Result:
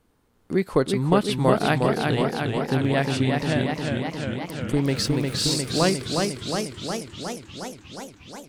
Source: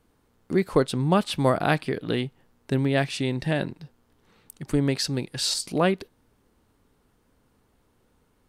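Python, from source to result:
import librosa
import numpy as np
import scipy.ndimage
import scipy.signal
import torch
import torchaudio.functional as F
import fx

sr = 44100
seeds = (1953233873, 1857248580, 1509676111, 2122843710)

y = fx.zero_step(x, sr, step_db=-38.5, at=(4.87, 5.56))
y = fx.echo_warbled(y, sr, ms=358, feedback_pct=74, rate_hz=2.8, cents=106, wet_db=-4.0)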